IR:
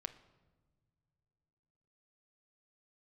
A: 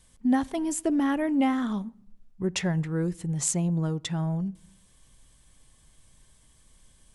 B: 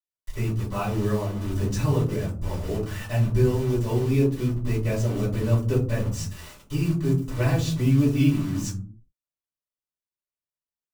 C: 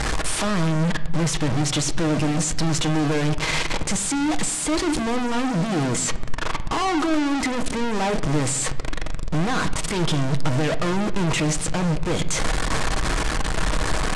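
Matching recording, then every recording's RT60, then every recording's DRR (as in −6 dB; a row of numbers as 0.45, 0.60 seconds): C; 0.75 s, 0.50 s, non-exponential decay; 19.5, −9.0, 8.0 decibels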